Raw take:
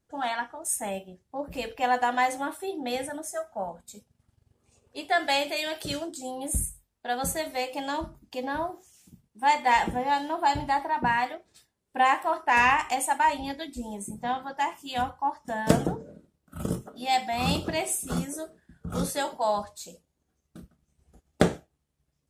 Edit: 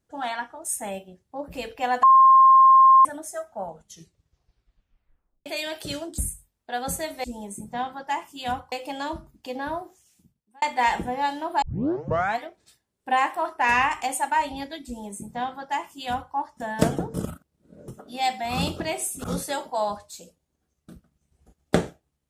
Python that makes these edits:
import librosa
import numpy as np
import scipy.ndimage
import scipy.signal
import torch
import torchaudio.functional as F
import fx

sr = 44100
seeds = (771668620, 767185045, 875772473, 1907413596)

y = fx.edit(x, sr, fx.bleep(start_s=2.03, length_s=1.02, hz=1060.0, db=-10.0),
    fx.tape_stop(start_s=3.63, length_s=1.83),
    fx.cut(start_s=6.18, length_s=0.36),
    fx.fade_out_span(start_s=8.65, length_s=0.85),
    fx.tape_start(start_s=10.5, length_s=0.78),
    fx.duplicate(start_s=13.74, length_s=1.48, to_s=7.6),
    fx.reverse_span(start_s=16.02, length_s=0.74),
    fx.cut(start_s=18.12, length_s=0.79), tone=tone)